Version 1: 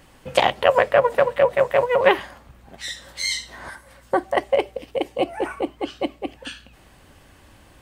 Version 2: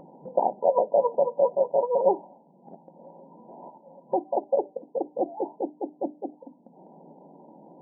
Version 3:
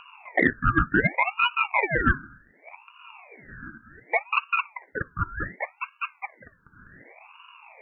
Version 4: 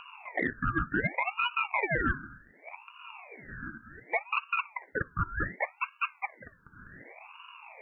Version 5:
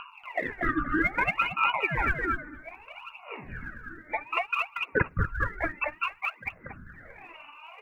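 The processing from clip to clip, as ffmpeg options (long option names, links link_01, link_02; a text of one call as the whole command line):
ffmpeg -i in.wav -af "bandreject=frequency=50:width_type=h:width=6,bandreject=frequency=100:width_type=h:width=6,bandreject=frequency=150:width_type=h:width=6,bandreject=frequency=200:width_type=h:width=6,bandreject=frequency=250:width_type=h:width=6,bandreject=frequency=300:width_type=h:width=6,afftfilt=real='re*between(b*sr/4096,150,1000)':imag='im*between(b*sr/4096,150,1000)':win_size=4096:overlap=0.75,acompressor=mode=upward:threshold=-34dB:ratio=2.5,volume=-4.5dB" out.wav
ffmpeg -i in.wav -af "highpass=frequency=840:width_type=q:width=1.6,acontrast=82,aeval=exprs='val(0)*sin(2*PI*1300*n/s+1300*0.5/0.67*sin(2*PI*0.67*n/s))':channel_layout=same,volume=-2dB" out.wav
ffmpeg -i in.wav -af "alimiter=limit=-18dB:level=0:latency=1:release=144" out.wav
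ffmpeg -i in.wav -filter_complex "[0:a]asplit=2[link_01][link_02];[link_02]aecho=0:1:235|470|705:0.708|0.135|0.0256[link_03];[link_01][link_03]amix=inputs=2:normalize=0,aphaser=in_gain=1:out_gain=1:delay=3.4:decay=0.69:speed=0.6:type=sinusoidal,volume=-2dB" out.wav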